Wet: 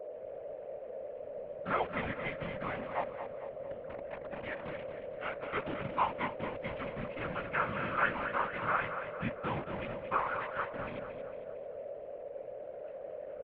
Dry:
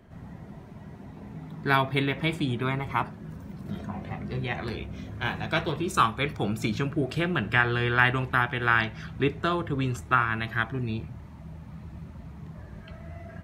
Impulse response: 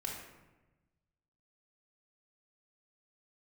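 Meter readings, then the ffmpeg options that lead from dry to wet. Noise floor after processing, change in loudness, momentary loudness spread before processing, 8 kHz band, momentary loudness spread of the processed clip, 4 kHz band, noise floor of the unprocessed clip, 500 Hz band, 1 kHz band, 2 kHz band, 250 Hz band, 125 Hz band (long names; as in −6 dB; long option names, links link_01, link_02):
−46 dBFS, −10.5 dB, 20 LU, below −30 dB, 11 LU, −15.5 dB, −45 dBFS, −3.5 dB, −6.5 dB, −11.0 dB, −13.0 dB, −16.5 dB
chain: -filter_complex "[0:a]flanger=delay=16:depth=3.8:speed=1.1,acrusher=bits=6:dc=4:mix=0:aa=0.000001,aeval=exprs='val(0)+0.0178*sin(2*PI*770*n/s)':channel_layout=same,afftfilt=real='hypot(re,im)*cos(2*PI*random(0))':imag='hypot(re,im)*sin(2*PI*random(1))':win_size=512:overlap=0.75,asplit=2[link_01][link_02];[link_02]aecho=0:1:226|452|678|904|1130|1356:0.355|0.174|0.0852|0.0417|0.0205|0.01[link_03];[link_01][link_03]amix=inputs=2:normalize=0,highpass=frequency=340:width_type=q:width=0.5412,highpass=frequency=340:width_type=q:width=1.307,lowpass=frequency=2900:width_type=q:width=0.5176,lowpass=frequency=2900:width_type=q:width=0.7071,lowpass=frequency=2900:width_type=q:width=1.932,afreqshift=-210"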